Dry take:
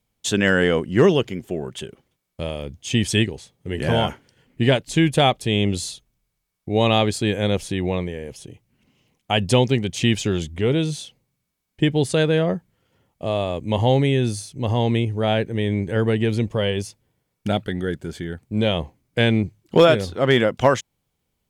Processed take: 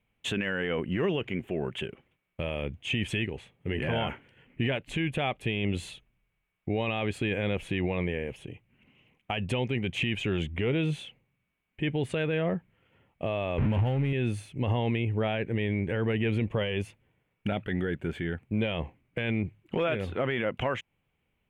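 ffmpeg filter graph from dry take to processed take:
-filter_complex "[0:a]asettb=1/sr,asplit=3[a][b][c];[a]atrim=end=13.584[d];[b]atrim=start=13.58:end=14.13,asetpts=PTS-STARTPTS,afade=t=in:d=0.004:c=qsin,afade=t=out:st=0.546:d=0.004:c=qsin,aeval=exprs='val(0)+0.5*0.0596*sgn(val(0))':c=same,bass=f=250:g=9,treble=f=4k:g=-2,adynamicsmooth=sensitivity=2.5:basefreq=690[e];[c]atrim=start=14.126[f];[d][e]acrossfade=d=0.004:c1=hsin:c2=qsin[g];[g][f]acrossfade=d=0.004:c1=qsin:c2=hsin,highshelf=f=3.6k:t=q:w=3:g=-12,acompressor=threshold=-20dB:ratio=6,alimiter=limit=-18.5dB:level=0:latency=1:release=12,volume=-1.5dB"

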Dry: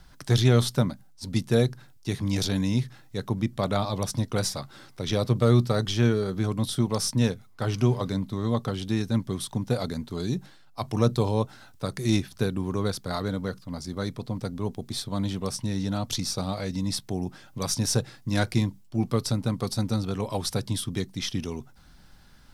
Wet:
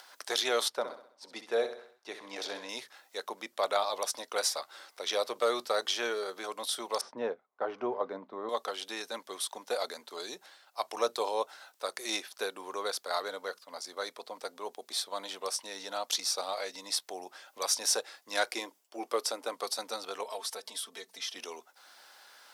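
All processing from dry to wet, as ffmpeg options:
-filter_complex "[0:a]asettb=1/sr,asplit=3[a][b][c];[a]atrim=end=0.684[d];[b]atrim=start=0.68:end=2.69,asetpts=PTS-STARTPTS,afade=t=in:d=0.004:c=qsin,afade=t=out:st=2.006:d=0.004:c=qsin,lowpass=f=1.6k:p=1,aecho=1:1:65|130|195|260|325:0.299|0.14|0.0659|0.031|0.0146,atrim=end_sample=88641[e];[c]atrim=start=2.686[f];[d][e]acrossfade=d=0.004:c1=hsin:c2=qsin[g];[g][f]acrossfade=d=0.004:c1=qsin:c2=hsin,asettb=1/sr,asplit=3[h][i][j];[h]atrim=end=7.014[k];[i]atrim=start=7.01:end=8.49,asetpts=PTS-STARTPTS,afade=t=in:d=0.004:c=qsin,afade=t=out:st=1.476:d=0.004:c=qsin,agate=range=-10dB:threshold=-46dB:ratio=16:release=100:detection=peak,lowpass=1.3k,lowshelf=f=310:g=11.5[l];[j]atrim=start=8.486[m];[k][l]acrossfade=d=0.004:c1=hsin:c2=qsin[n];[n][m]acrossfade=d=0.004:c1=qsin:c2=hsin,asettb=1/sr,asplit=3[o][p][q];[o]atrim=end=18.524[r];[p]atrim=start=18.52:end=19.54,asetpts=PTS-STARTPTS,afade=t=in:d=0.004:c=qsin,afade=t=out:st=1.016:d=0.004:c=qsin,highpass=f=300:t=q:w=1.6,equalizer=f=4.1k:w=7.2:g=-6[s];[q]atrim=start=19.536[t];[r][s]acrossfade=d=0.004:c1=hsin:c2=qsin[u];[u][t]acrossfade=d=0.004:c1=qsin:c2=hsin,asettb=1/sr,asplit=3[v][w][x];[v]atrim=end=20.234[y];[w]atrim=start=20.23:end=21.36,asetpts=PTS-STARTPTS,afade=t=in:d=0.004:c=qsin,afade=t=out:st=1.126:d=0.004:c=qsin,aecho=1:1:4.5:0.88,atrim=end_sample=49833,acompressor=threshold=-35dB:ratio=2.5:attack=3.2:release=140:knee=1:detection=peak[z];[x]atrim=start=21.356[aa];[y][z]acrossfade=d=0.004:c1=hsin:c2=qsin[ab];[ab][aa]acrossfade=d=0.004:c1=qsin:c2=hsin,highpass=f=510:w=0.5412,highpass=f=510:w=1.3066,acompressor=mode=upward:threshold=-48dB:ratio=2.5"

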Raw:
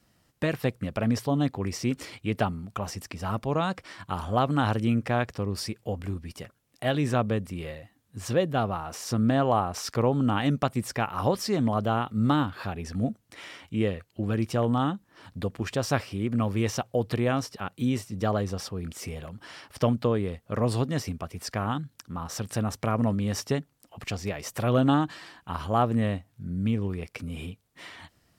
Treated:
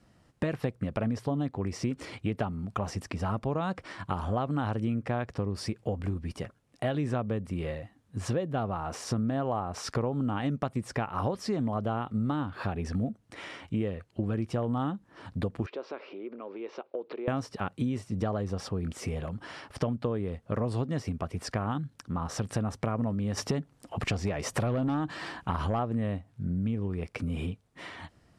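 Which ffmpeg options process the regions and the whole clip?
-filter_complex "[0:a]asettb=1/sr,asplit=3[a][b][c];[a]atrim=end=15.664[d];[b]atrim=start=15.66:end=17.28,asetpts=PTS-STARTPTS,afade=t=in:d=0.004:c=qsin,afade=t=out:st=1.616:d=0.004:c=qsin,acompressor=threshold=-32dB:ratio=12:attack=3.2:release=140:knee=1:detection=peak,highpass=f=350:w=0.5412,highpass=f=350:w=1.3066,equalizer=f=380:t=q:w=4:g=4,equalizer=f=740:t=q:w=4:g=-7,equalizer=f=1.2k:t=q:w=4:g=-3,equalizer=f=1.8k:t=q:w=4:g=-8,equalizer=f=3.1k:t=q:w=4:g=-6,lowpass=f=3.5k:w=0.5412,lowpass=f=3.5k:w=1.3066[e];[c]atrim=start=17.276[f];[d][e]acrossfade=d=0.004:c1=hsin:c2=qsin[g];[g][f]acrossfade=d=0.004:c1=qsin:c2=hsin,asettb=1/sr,asplit=3[h][i][j];[h]atrim=end=23.374[k];[i]atrim=start=23.37:end=25.79,asetpts=PTS-STARTPTS,afade=t=in:d=0.004:c=qsin,afade=t=out:st=2.416:d=0.004:c=qsin,acompressor=threshold=-26dB:ratio=2:attack=3.2:release=140:knee=1:detection=peak,aeval=exprs='0.15*sin(PI/2*1.41*val(0)/0.15)':c=same[l];[j]atrim=start=25.786[m];[k][l]acrossfade=d=0.004:c1=hsin:c2=qsin[n];[n][m]acrossfade=d=0.004:c1=qsin:c2=hsin,highshelf=f=2.2k:g=-9.5,acompressor=threshold=-32dB:ratio=6,lowpass=f=11k:w=0.5412,lowpass=f=11k:w=1.3066,volume=5dB"

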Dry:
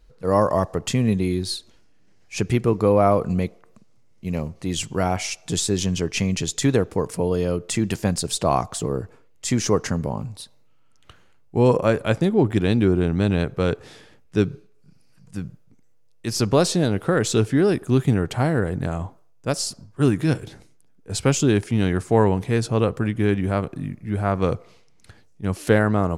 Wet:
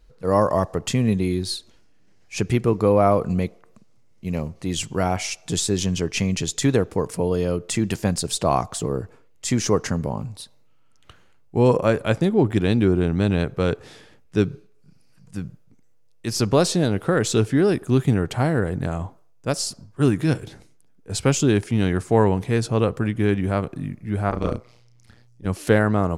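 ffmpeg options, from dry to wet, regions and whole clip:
-filter_complex "[0:a]asettb=1/sr,asplit=3[a][b][c];[a]atrim=end=24.294[d];[b]atrim=start=24.29:end=25.47,asetpts=PTS-STARTPTS,afade=t=in:d=0.004:c=qsin,afade=t=out:st=1.176:d=0.004:c=qsin,equalizer=f=5k:t=o:w=0.31:g=5,tremolo=f=120:d=0.974,asplit=2[e][f];[f]adelay=33,volume=-5dB[g];[e][g]amix=inputs=2:normalize=0,atrim=end_sample=52038[h];[c]atrim=start=25.466[i];[d][h]acrossfade=d=0.004:c1=hsin:c2=qsin[j];[j][i]acrossfade=d=0.004:c1=qsin:c2=hsin"

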